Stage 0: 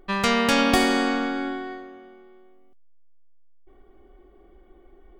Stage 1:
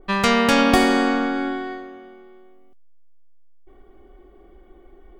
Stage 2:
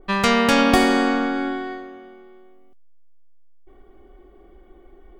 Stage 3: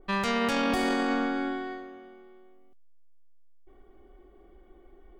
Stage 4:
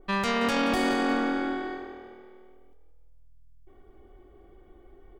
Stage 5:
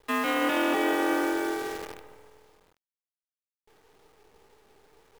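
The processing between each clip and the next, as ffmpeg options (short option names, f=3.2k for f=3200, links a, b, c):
-af "adynamicequalizer=threshold=0.02:dfrequency=2100:dqfactor=0.7:tfrequency=2100:tqfactor=0.7:attack=5:release=100:ratio=0.375:range=2.5:mode=cutabove:tftype=highshelf,volume=4dB"
-af anull
-af "alimiter=limit=-12.5dB:level=0:latency=1:release=18,volume=-6dB"
-filter_complex "[0:a]asplit=5[a][b][c][d][e];[b]adelay=177,afreqshift=40,volume=-12dB[f];[c]adelay=354,afreqshift=80,volume=-19.3dB[g];[d]adelay=531,afreqshift=120,volume=-26.7dB[h];[e]adelay=708,afreqshift=160,volume=-34dB[i];[a][f][g][h][i]amix=inputs=5:normalize=0,volume=1dB"
-af "highpass=f=150:t=q:w=0.5412,highpass=f=150:t=q:w=1.307,lowpass=f=3.4k:t=q:w=0.5176,lowpass=f=3.4k:t=q:w=0.7071,lowpass=f=3.4k:t=q:w=1.932,afreqshift=58,acrusher=bits=7:dc=4:mix=0:aa=0.000001"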